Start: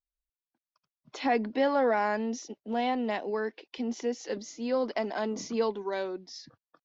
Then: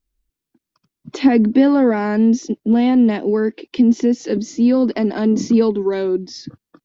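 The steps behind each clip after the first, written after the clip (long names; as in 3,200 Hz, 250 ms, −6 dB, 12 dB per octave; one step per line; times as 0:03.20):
in parallel at +1 dB: downward compressor, threshold −38 dBFS, peak gain reduction 15.5 dB
on the sum: low shelf with overshoot 450 Hz +11 dB, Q 1.5
level +4 dB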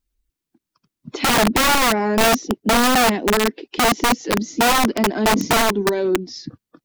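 spectral magnitudes quantised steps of 15 dB
wrap-around overflow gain 11 dB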